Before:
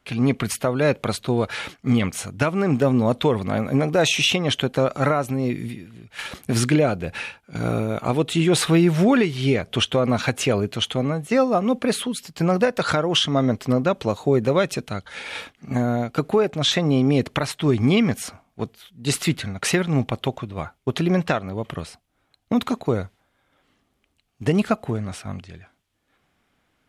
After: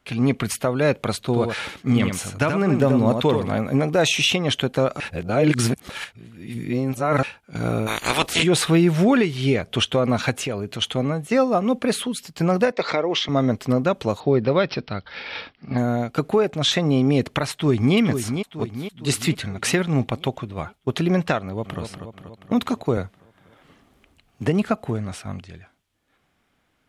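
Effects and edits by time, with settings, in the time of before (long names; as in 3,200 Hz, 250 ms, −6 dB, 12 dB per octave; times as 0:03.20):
0:01.25–0:03.56: single-tap delay 82 ms −6 dB
0:05.00–0:07.23: reverse
0:07.86–0:08.42: ceiling on every frequency bin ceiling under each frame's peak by 29 dB
0:10.33–0:10.82: downward compressor 2 to 1, threshold −27 dBFS
0:12.72–0:13.29: loudspeaker in its box 270–5,300 Hz, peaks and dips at 420 Hz +4 dB, 1,500 Hz −10 dB, 2,100 Hz +9 dB, 3,000 Hz −7 dB
0:14.20–0:15.78: bad sample-rate conversion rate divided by 4×, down none, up filtered
0:17.51–0:17.96: delay throw 460 ms, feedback 55%, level −7.5 dB
0:21.41–0:21.81: delay throw 240 ms, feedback 60%, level −7 dB
0:22.97–0:24.77: multiband upward and downward compressor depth 40%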